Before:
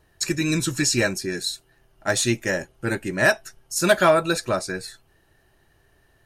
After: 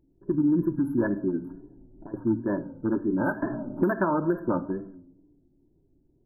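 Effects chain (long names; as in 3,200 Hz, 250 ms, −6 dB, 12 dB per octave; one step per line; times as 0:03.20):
adaptive Wiener filter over 41 samples
linear-phase brick-wall band-stop 1,700–11,000 Hz
high-shelf EQ 6,800 Hz −8.5 dB
hollow resonant body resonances 280/940 Hz, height 18 dB, ringing for 55 ms
brickwall limiter −10.5 dBFS, peak gain reduction 8.5 dB
0:01.49–0:02.14: compressor whose output falls as the input rises −34 dBFS, ratio −1
rectangular room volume 2,400 cubic metres, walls furnished, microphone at 0.94 metres
low-pass that shuts in the quiet parts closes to 450 Hz, open at −18.5 dBFS
tape wow and flutter 99 cents
0:03.42–0:04.61: multiband upward and downward compressor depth 100%
level −6.5 dB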